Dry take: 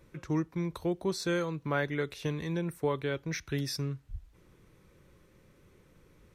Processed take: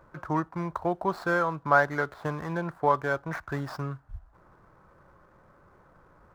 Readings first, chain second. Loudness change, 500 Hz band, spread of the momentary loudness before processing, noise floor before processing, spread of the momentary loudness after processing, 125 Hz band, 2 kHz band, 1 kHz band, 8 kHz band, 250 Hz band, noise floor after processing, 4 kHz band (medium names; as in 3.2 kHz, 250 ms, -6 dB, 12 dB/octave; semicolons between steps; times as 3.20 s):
+5.0 dB, +4.0 dB, 5 LU, -63 dBFS, 12 LU, 0.0 dB, +9.0 dB, +13.5 dB, no reading, 0.0 dB, -60 dBFS, -8.0 dB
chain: median filter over 15 samples; high-order bell 1 kHz +14.5 dB